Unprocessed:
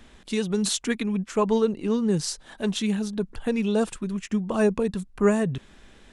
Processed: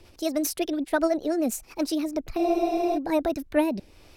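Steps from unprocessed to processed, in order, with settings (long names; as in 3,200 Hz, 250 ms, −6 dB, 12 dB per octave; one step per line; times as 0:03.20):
rotating-speaker cabinet horn 7 Hz, later 0.9 Hz, at 0:02.82
change of speed 1.47×
frozen spectrum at 0:02.40, 0.57 s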